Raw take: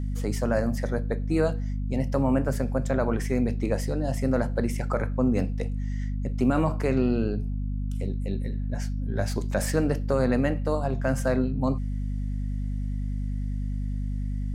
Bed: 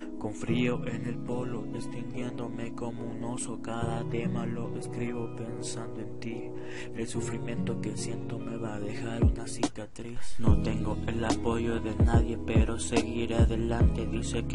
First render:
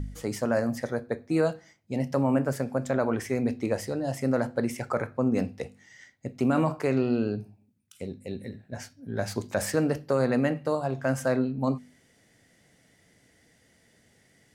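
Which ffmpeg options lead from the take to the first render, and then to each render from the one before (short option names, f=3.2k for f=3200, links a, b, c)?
-af "bandreject=f=50:t=h:w=4,bandreject=f=100:t=h:w=4,bandreject=f=150:t=h:w=4,bandreject=f=200:t=h:w=4,bandreject=f=250:t=h:w=4"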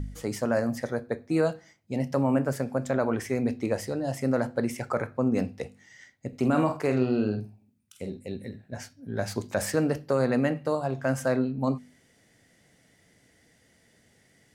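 -filter_complex "[0:a]asettb=1/sr,asplit=3[a][b][c];[a]atrim=end=6.284[d];[b]atrim=start=6.28:end=8.21,asetpts=PTS-STARTPTS,afade=t=in:d=0.004:c=qsin,afade=t=out:st=1.926:d=0.004:c=qsin,asplit=2[e][f];[f]adelay=47,volume=-7.5dB[g];[e][g]amix=inputs=2:normalize=0,atrim=end_sample=85113[h];[c]atrim=start=8.206[i];[d][h]acrossfade=d=0.004:c1=hsin:c2=qsin[j];[j][i]acrossfade=d=0.004:c1=qsin:c2=hsin"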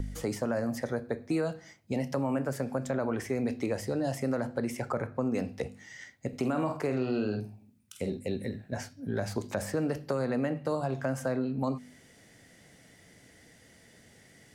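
-filter_complex "[0:a]acrossover=split=320|1200[a][b][c];[a]acompressor=threshold=-38dB:ratio=4[d];[b]acompressor=threshold=-36dB:ratio=4[e];[c]acompressor=threshold=-48dB:ratio=4[f];[d][e][f]amix=inputs=3:normalize=0,asplit=2[g][h];[h]alimiter=level_in=4dB:limit=-24dB:level=0:latency=1,volume=-4dB,volume=-2dB[i];[g][i]amix=inputs=2:normalize=0"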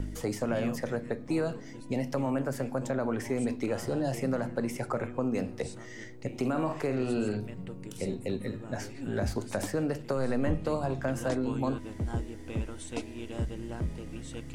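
-filter_complex "[1:a]volume=-9.5dB[a];[0:a][a]amix=inputs=2:normalize=0"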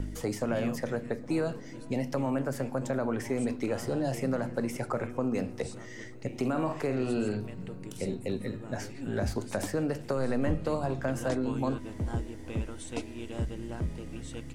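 -af "aecho=1:1:405|810|1215|1620:0.0668|0.0394|0.0233|0.0137"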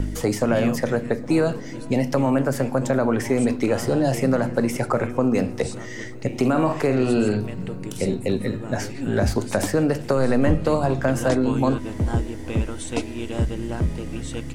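-af "volume=10dB"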